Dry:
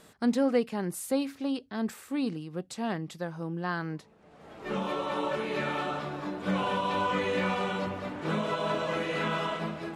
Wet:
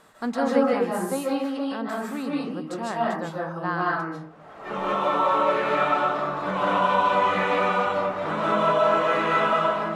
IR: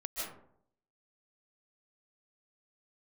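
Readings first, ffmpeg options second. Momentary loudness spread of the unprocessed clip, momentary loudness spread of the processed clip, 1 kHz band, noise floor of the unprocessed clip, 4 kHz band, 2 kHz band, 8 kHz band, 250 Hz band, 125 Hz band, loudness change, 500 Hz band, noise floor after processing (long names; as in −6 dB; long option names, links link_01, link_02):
7 LU, 10 LU, +11.0 dB, −56 dBFS, +3.0 dB, +7.5 dB, can't be measured, +2.5 dB, +0.5 dB, +7.5 dB, +8.0 dB, −44 dBFS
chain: -filter_complex "[0:a]equalizer=frequency=1100:width_type=o:width=1.7:gain=10.5[link_01];[1:a]atrim=start_sample=2205[link_02];[link_01][link_02]afir=irnorm=-1:irlink=0"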